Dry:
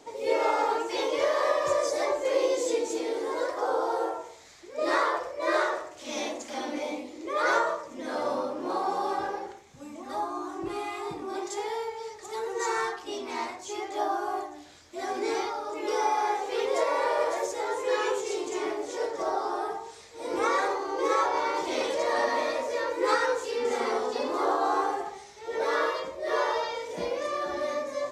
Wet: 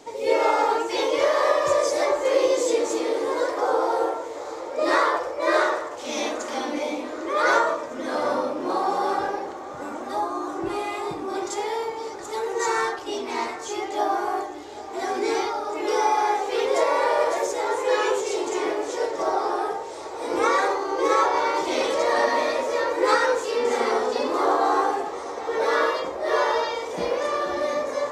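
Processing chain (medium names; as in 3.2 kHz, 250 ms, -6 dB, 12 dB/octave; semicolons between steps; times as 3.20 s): on a send: filtered feedback delay 783 ms, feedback 80%, low-pass 3.2 kHz, level -15 dB; on the sum: trim +5 dB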